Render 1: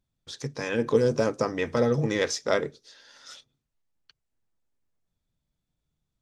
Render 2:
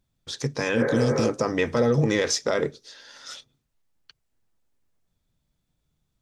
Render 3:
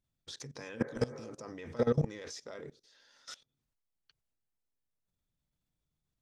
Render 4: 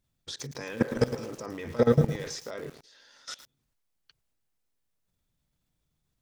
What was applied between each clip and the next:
healed spectral selection 0:00.79–0:01.26, 350–2,300 Hz both; brickwall limiter −18 dBFS, peak gain reduction 9 dB; level +6 dB
output level in coarse steps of 20 dB; level −5 dB
feedback echo at a low word length 110 ms, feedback 35%, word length 8 bits, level −10 dB; level +7 dB

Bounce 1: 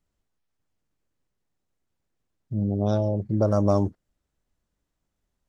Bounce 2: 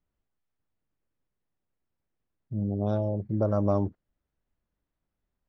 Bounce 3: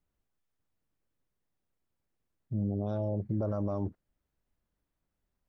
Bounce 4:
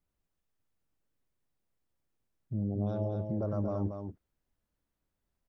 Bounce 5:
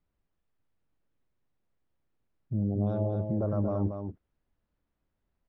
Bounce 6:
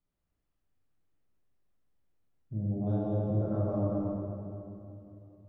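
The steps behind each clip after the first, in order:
low-pass filter 2,900 Hz 12 dB per octave; level −4 dB
brickwall limiter −22.5 dBFS, peak gain reduction 10.5 dB
single-tap delay 229 ms −6 dB; level −1.5 dB
high-frequency loss of the air 250 metres; level +4 dB
convolution reverb RT60 2.8 s, pre-delay 22 ms, DRR −5 dB; level −7.5 dB

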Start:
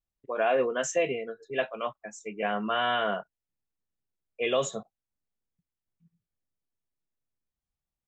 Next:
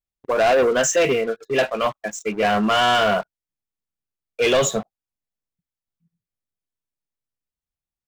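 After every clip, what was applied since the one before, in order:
leveller curve on the samples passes 3
level +2.5 dB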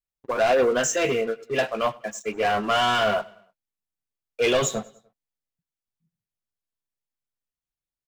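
repeating echo 99 ms, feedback 50%, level −23 dB
flanger 0.38 Hz, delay 6.9 ms, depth 2.5 ms, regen −37%

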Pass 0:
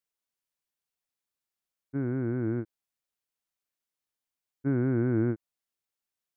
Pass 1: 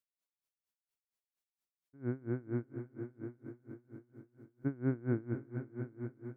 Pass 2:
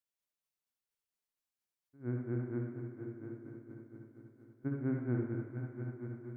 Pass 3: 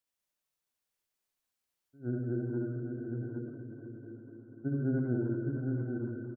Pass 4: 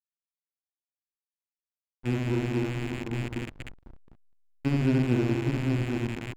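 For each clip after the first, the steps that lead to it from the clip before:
echo machine with several playback heads 248 ms, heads all three, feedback 58%, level −13 dB; tremolo with a sine in dB 4.3 Hz, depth 26 dB; level −2 dB
convolution reverb RT60 0.70 s, pre-delay 50 ms, DRR 0.5 dB; level −3 dB
gate on every frequency bin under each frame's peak −30 dB strong; on a send: multi-tap delay 70/85/615/810 ms −4/−9.5/−13.5/−4.5 dB; on the sum: level +2.5 dB
loose part that buzzes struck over −42 dBFS, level −31 dBFS; time-frequency box erased 0:03.34–0:03.72, 570–1,200 Hz; slack as between gear wheels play −33 dBFS; level +7.5 dB

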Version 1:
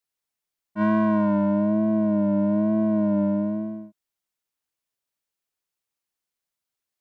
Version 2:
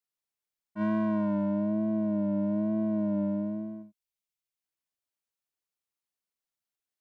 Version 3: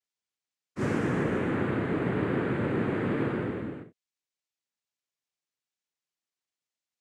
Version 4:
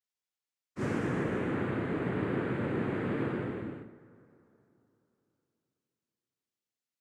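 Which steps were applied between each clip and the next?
gain on a spectral selection 0:03.82–0:04.64, 230–2,000 Hz −6 dB; dynamic equaliser 1,200 Hz, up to −4 dB, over −41 dBFS, Q 0.94; level −6.5 dB
cochlear-implant simulation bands 3
dense smooth reverb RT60 3.3 s, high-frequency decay 0.55×, DRR 16 dB; level −4 dB

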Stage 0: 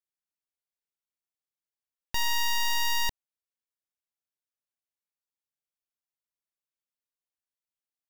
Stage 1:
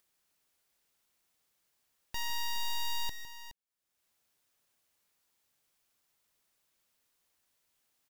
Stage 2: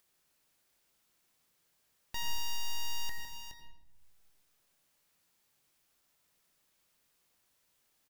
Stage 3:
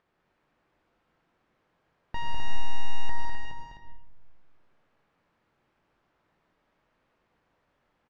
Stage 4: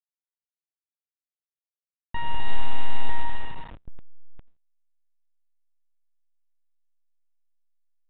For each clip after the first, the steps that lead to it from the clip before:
upward compression, threshold −49 dBFS; multi-tap delay 156/419 ms −12.5/−12.5 dB; level −8.5 dB
soft clipping −35 dBFS, distortion −16 dB; double-tracking delay 22 ms −11.5 dB; on a send at −6.5 dB: convolution reverb RT60 0.95 s, pre-delay 77 ms; on the sum: level +2 dB
low-pass filter 1,500 Hz 12 dB per octave; loudspeakers that aren't time-aligned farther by 69 metres −5 dB, 88 metres −5 dB; level +9.5 dB
hold until the input has moved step −40 dBFS; noise gate with hold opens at −37 dBFS; level +4 dB; mu-law 64 kbit/s 8,000 Hz

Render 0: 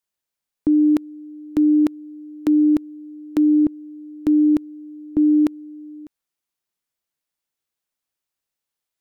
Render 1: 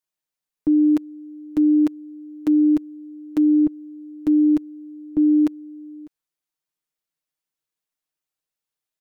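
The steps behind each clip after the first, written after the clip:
comb filter 6.5 ms
level −5 dB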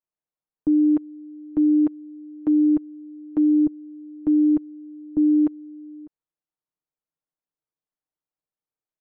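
low-pass filter 1,100 Hz 12 dB per octave
level −1.5 dB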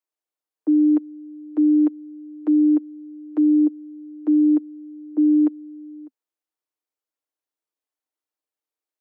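Butterworth high-pass 260 Hz 96 dB per octave
level +1.5 dB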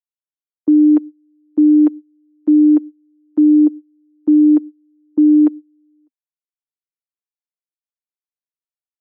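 noise gate −29 dBFS, range −24 dB
level +6 dB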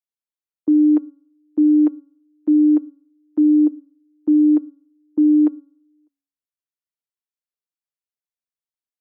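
hum removal 279.6 Hz, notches 5
level −3.5 dB

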